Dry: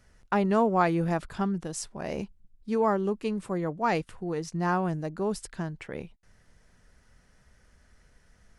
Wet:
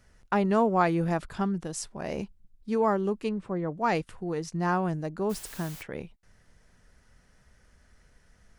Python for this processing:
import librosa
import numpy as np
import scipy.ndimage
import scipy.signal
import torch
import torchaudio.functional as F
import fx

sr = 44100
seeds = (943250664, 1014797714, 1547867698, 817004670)

y = fx.spacing_loss(x, sr, db_at_10k=21, at=(3.29, 3.72))
y = fx.dmg_noise_colour(y, sr, seeds[0], colour='white', level_db=-46.0, at=(5.29, 5.81), fade=0.02)